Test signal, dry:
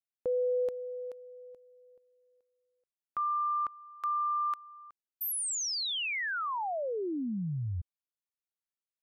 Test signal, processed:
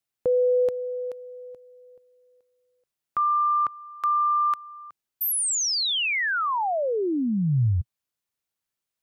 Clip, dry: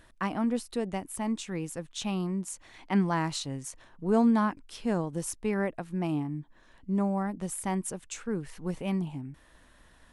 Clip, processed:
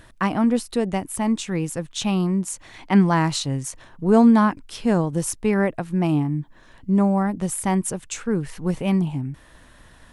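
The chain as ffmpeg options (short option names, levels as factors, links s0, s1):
-af "equalizer=f=120:w=1.7:g=5,volume=2.66"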